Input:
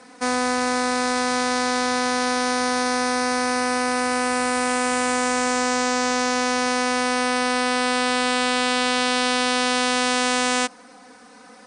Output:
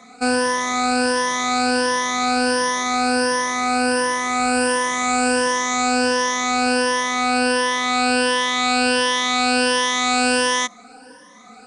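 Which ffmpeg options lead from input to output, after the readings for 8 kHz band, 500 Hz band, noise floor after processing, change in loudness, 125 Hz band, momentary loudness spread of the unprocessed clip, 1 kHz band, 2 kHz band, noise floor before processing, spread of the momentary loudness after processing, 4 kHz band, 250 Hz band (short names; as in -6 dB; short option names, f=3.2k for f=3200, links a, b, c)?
+2.5 dB, +2.5 dB, -45 dBFS, +2.5 dB, +2.0 dB, 2 LU, +2.5 dB, +2.5 dB, -47 dBFS, 3 LU, +2.5 dB, +2.0 dB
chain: -af "afftfilt=real='re*pow(10,19/40*sin(2*PI*(1.2*log(max(b,1)*sr/1024/100)/log(2)-(1.4)*(pts-256)/sr)))':imag='im*pow(10,19/40*sin(2*PI*(1.2*log(max(b,1)*sr/1024/100)/log(2)-(1.4)*(pts-256)/sr)))':win_size=1024:overlap=0.75,volume=-1.5dB"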